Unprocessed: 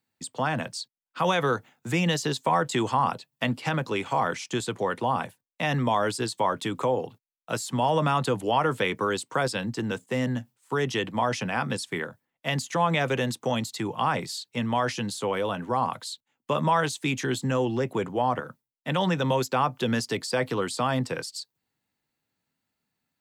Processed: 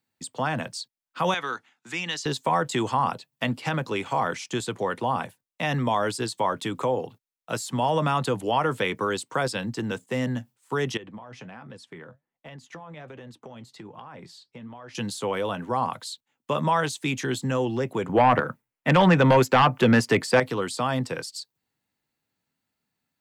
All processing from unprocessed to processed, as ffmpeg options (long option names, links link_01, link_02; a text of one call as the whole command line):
ffmpeg -i in.wav -filter_complex "[0:a]asettb=1/sr,asplit=3[link_01][link_02][link_03];[link_01]atrim=end=1.344[link_04];[link_02]atrim=start=1.34:end=2.26,asetpts=PTS-STARTPTS,afade=type=in:duration=0.004:curve=qsin,afade=type=out:start_time=0.916:duration=0.004:curve=qsin,highpass=370,lowpass=7000,equalizer=frequency=540:width=1.2:gain=-13.5[link_05];[link_03]atrim=start=2.256[link_06];[link_04][link_05]acrossfade=duration=0.004:curve1=hsin:curve2=qsin[link_07];[link_07][link_06]acrossfade=duration=0.004:curve1=qsin:curve2=hsin,asettb=1/sr,asplit=3[link_08][link_09][link_10];[link_08]atrim=end=10.974[link_11];[link_09]atrim=start=10.97:end=14.95,asetpts=PTS-STARTPTS,afade=type=in:duration=0.004:curve=qsin,afade=type=out:start_time=3.976:duration=0.004:curve=qsin,lowpass=frequency=1700:poles=1,acompressor=threshold=-33dB:ratio=16:attack=3.2:release=140:knee=1:detection=peak,flanger=delay=1.6:depth=6.6:regen=71:speed=1.3:shape=triangular[link_12];[link_10]atrim=start=14.946[link_13];[link_11][link_12]acrossfade=duration=0.004:curve1=hsin:curve2=qsin[link_14];[link_14][link_13]acrossfade=duration=0.004:curve1=qsin:curve2=hsin,asettb=1/sr,asplit=3[link_15][link_16][link_17];[link_15]atrim=end=18.094[link_18];[link_16]atrim=start=18.09:end=20.4,asetpts=PTS-STARTPTS,afade=type=in:duration=0.004:curve=qsin,afade=type=out:start_time=2.306:duration=0.004:curve=qsin,highshelf=frequency=3000:width_type=q:width=1.5:gain=-7,aeval=exprs='0.282*sin(PI/2*1.78*val(0)/0.282)':channel_layout=same[link_19];[link_17]atrim=start=20.396[link_20];[link_18][link_19]acrossfade=duration=0.004:curve1=hsin:curve2=qsin[link_21];[link_21][link_20]acrossfade=duration=0.004:curve1=qsin:curve2=hsin" out.wav